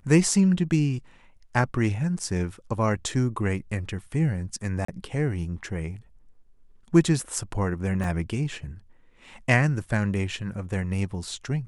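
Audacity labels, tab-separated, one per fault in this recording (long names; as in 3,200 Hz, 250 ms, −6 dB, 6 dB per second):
4.850000	4.880000	drop-out 34 ms
8.040000	8.040000	drop-out 2.7 ms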